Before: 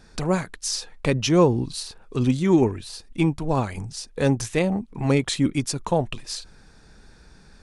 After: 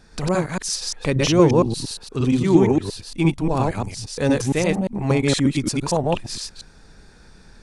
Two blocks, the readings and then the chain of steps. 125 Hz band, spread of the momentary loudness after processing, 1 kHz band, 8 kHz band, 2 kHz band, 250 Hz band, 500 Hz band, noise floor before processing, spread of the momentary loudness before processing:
+3.0 dB, 13 LU, +3.0 dB, +3.0 dB, +3.0 dB, +3.0 dB, +3.0 dB, -51 dBFS, 14 LU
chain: reverse delay 0.116 s, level 0 dB

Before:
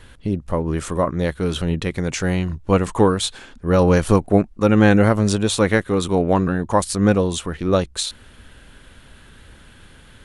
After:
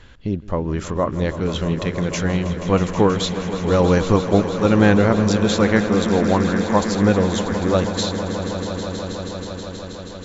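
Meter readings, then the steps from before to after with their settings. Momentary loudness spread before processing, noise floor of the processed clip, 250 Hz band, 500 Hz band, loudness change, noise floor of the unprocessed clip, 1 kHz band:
9 LU, -34 dBFS, +1.0 dB, +0.5 dB, 0.0 dB, -47 dBFS, +0.5 dB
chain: brick-wall FIR low-pass 7600 Hz; on a send: swelling echo 0.16 s, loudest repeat 5, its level -13.5 dB; on the sum: gain -1 dB

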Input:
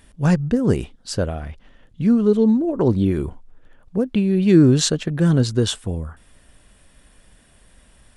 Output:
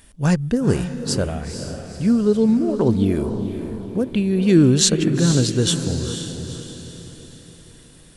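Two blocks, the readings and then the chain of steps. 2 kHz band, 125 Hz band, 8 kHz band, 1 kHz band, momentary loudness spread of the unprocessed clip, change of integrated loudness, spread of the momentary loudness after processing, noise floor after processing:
+1.5 dB, 0.0 dB, +6.0 dB, +0.5 dB, 14 LU, -0.5 dB, 16 LU, -47 dBFS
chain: high shelf 3800 Hz +8 dB; on a send: diffused feedback echo 0.478 s, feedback 47%, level -8 dB; on the sum: gain -1 dB

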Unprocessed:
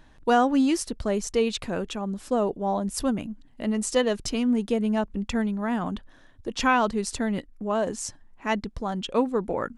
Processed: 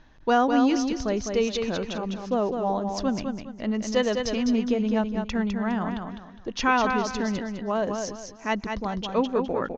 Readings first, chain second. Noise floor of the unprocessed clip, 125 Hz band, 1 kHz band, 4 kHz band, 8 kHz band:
-54 dBFS, 0.0 dB, +0.5 dB, +0.5 dB, -4.0 dB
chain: Chebyshev low-pass 6500 Hz, order 6; feedback echo 0.205 s, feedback 30%, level -5.5 dB

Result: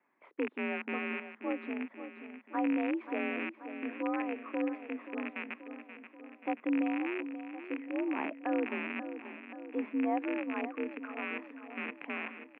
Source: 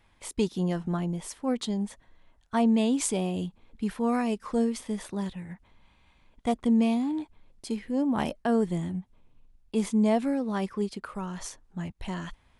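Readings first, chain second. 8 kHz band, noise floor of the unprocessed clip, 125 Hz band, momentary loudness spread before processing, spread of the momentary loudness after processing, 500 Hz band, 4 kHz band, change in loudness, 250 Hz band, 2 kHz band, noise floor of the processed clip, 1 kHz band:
under -40 dB, -64 dBFS, under -25 dB, 14 LU, 12 LU, -7.0 dB, -11.5 dB, -7.0 dB, -8.0 dB, +4.5 dB, -60 dBFS, -4.5 dB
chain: rattling part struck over -38 dBFS, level -14 dBFS; mistuned SSB +53 Hz 180–2200 Hz; feedback echo 0.532 s, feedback 59%, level -11 dB; gain -7.5 dB

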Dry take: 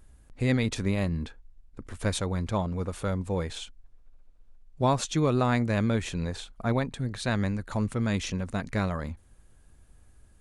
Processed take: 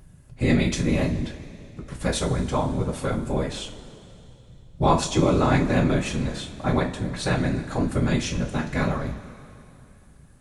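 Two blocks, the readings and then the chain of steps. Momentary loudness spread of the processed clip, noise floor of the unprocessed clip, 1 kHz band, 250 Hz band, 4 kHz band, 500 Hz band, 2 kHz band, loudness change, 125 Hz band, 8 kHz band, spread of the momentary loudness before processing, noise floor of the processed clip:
14 LU, -57 dBFS, +5.5 dB, +5.0 dB, +4.5 dB, +5.0 dB, +4.5 dB, +4.5 dB, +3.5 dB, +5.0 dB, 10 LU, -51 dBFS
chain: whisperiser; two-slope reverb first 0.26 s, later 2.9 s, from -19 dB, DRR 0.5 dB; gain +2 dB

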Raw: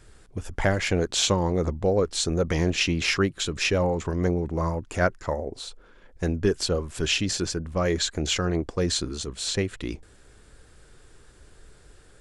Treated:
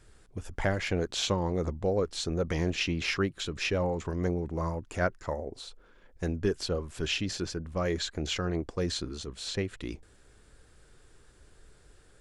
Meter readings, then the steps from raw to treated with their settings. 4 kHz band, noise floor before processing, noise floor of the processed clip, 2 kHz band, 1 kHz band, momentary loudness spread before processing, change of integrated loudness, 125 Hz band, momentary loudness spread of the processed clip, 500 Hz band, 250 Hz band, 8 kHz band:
-6.5 dB, -53 dBFS, -59 dBFS, -6.0 dB, -5.5 dB, 9 LU, -6.0 dB, -5.5 dB, 9 LU, -5.5 dB, -5.5 dB, -10.5 dB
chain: dynamic EQ 8200 Hz, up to -7 dB, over -45 dBFS, Q 1.2; gain -5.5 dB

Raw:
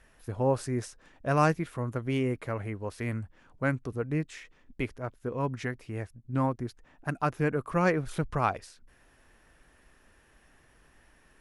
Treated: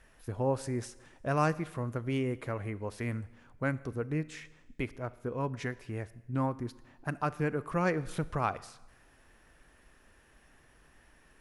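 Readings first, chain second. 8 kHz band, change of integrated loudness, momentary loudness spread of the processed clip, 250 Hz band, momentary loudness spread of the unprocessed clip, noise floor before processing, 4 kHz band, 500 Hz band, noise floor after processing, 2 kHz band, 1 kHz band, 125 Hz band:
-2.5 dB, -3.5 dB, 11 LU, -3.0 dB, 13 LU, -63 dBFS, -2.5 dB, -3.5 dB, -62 dBFS, -3.5 dB, -3.5 dB, -3.0 dB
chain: in parallel at -2 dB: compressor, threshold -34 dBFS, peak gain reduction 15 dB; on the sum: Schroeder reverb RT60 1.1 s, combs from 26 ms, DRR 17.5 dB; gain -5.5 dB

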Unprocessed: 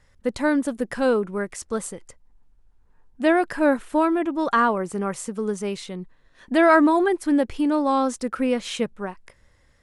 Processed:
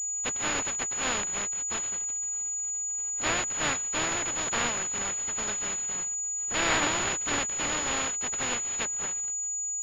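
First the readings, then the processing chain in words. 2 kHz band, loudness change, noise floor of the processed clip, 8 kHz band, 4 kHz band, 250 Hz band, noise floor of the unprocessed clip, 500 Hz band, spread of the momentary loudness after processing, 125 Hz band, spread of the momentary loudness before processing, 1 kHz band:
-3.5 dB, -5.0 dB, -32 dBFS, +16.0 dB, +5.0 dB, -18.5 dB, -59 dBFS, -15.5 dB, 3 LU, -4.0 dB, 11 LU, -10.0 dB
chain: spectral contrast lowered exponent 0.13; pulse-width modulation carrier 6900 Hz; gain -7 dB

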